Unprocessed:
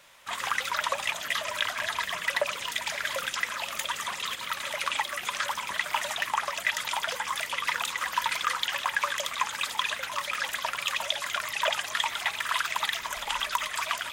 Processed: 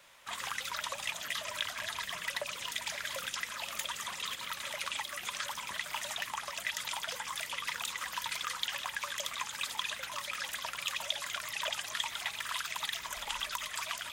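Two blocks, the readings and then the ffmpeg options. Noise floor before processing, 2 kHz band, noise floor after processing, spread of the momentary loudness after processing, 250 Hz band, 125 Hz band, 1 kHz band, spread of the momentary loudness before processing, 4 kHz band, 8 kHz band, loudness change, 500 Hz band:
−39 dBFS, −8.5 dB, −45 dBFS, 2 LU, −6.0 dB, −4.0 dB, −10.0 dB, 3 LU, −5.0 dB, −3.5 dB, −7.0 dB, −10.0 dB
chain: -filter_complex "[0:a]acrossover=split=230|3000[link_01][link_02][link_03];[link_02]acompressor=threshold=-39dB:ratio=2[link_04];[link_01][link_04][link_03]amix=inputs=3:normalize=0,volume=-3.5dB"

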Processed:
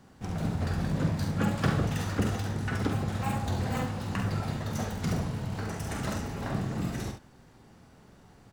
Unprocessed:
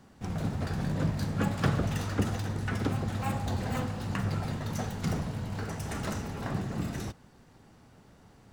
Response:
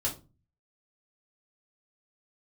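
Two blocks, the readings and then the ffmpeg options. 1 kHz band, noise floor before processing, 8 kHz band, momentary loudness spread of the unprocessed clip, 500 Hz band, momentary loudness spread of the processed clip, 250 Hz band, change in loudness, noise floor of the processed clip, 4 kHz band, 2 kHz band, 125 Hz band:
+1.5 dB, −58 dBFS, +1.5 dB, 6 LU, +1.0 dB, 6 LU, +1.5 dB, +1.0 dB, −56 dBFS, +1.5 dB, +1.5 dB, +1.0 dB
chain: -af "aecho=1:1:46|69:0.447|0.376"

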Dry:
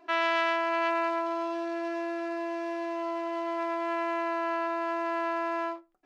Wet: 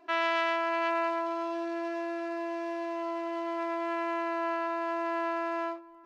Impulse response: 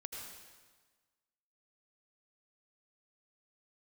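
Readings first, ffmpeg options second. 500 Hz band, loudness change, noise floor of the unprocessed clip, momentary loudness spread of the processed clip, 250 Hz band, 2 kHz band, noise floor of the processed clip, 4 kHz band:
−1.5 dB, −1.5 dB, −54 dBFS, 7 LU, −1.0 dB, −1.5 dB, −51 dBFS, −1.5 dB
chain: -filter_complex "[0:a]asplit=2[link_01][link_02];[link_02]lowpass=frequency=1700:poles=1[link_03];[1:a]atrim=start_sample=2205,asetrate=26460,aresample=44100[link_04];[link_03][link_04]afir=irnorm=-1:irlink=0,volume=-18dB[link_05];[link_01][link_05]amix=inputs=2:normalize=0,volume=-2dB"

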